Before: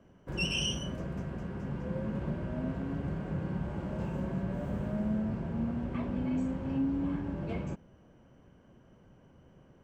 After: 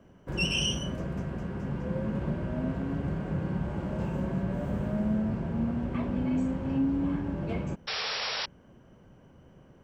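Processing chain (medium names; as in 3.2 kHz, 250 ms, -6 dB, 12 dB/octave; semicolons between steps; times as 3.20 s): painted sound noise, 7.87–8.46 s, 400–5700 Hz -36 dBFS; trim +3.5 dB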